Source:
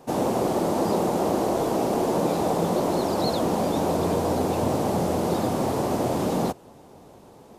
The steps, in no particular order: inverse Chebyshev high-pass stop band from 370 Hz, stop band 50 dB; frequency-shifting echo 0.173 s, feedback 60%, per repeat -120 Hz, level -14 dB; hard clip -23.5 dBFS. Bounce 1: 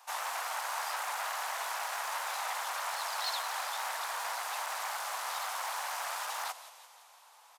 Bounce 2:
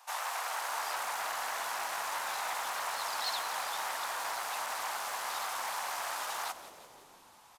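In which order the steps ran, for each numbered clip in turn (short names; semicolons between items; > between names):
frequency-shifting echo > hard clip > inverse Chebyshev high-pass; hard clip > inverse Chebyshev high-pass > frequency-shifting echo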